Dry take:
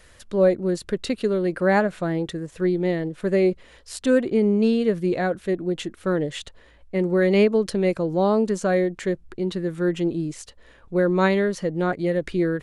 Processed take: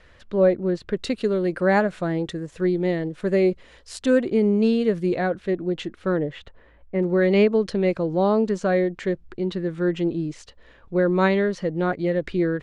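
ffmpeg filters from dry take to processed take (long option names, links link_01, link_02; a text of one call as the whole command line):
ffmpeg -i in.wav -af "asetnsamples=nb_out_samples=441:pad=0,asendcmd='0.97 lowpass f 8200;5.15 lowpass f 4600;6.17 lowpass f 2000;7.03 lowpass f 4900',lowpass=3400" out.wav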